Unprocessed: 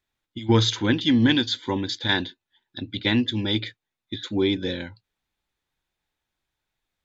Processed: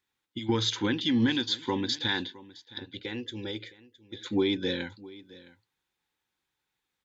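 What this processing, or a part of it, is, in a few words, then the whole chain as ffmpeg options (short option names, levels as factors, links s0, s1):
PA system with an anti-feedback notch: -filter_complex "[0:a]highpass=f=170:p=1,asuperstop=centerf=640:order=4:qfactor=4.4,alimiter=limit=0.15:level=0:latency=1:release=235,asettb=1/sr,asplit=3[s0][s1][s2];[s0]atrim=end=2.784[s3];[s1]atrim=start=2.78:end=4.26,asetpts=PTS-STARTPTS,afade=t=in:d=0.004:c=qsin,afade=t=out:st=1.476:d=0.004:c=qsin,equalizer=f=125:t=o:w=1:g=-7,equalizer=f=250:t=o:w=1:g=-11,equalizer=f=500:t=o:w=1:g=4,equalizer=f=1000:t=o:w=1:g=-10,equalizer=f=2000:t=o:w=1:g=-4,equalizer=f=4000:t=o:w=1:g=-10[s4];[s2]atrim=start=4.256[s5];[s3][s4]acrossfade=d=0.004:c1=hsin:c2=qsin[s6];[s6][s5]acrossfade=d=0.004:c1=qsin:c2=hsin,aecho=1:1:664:0.1"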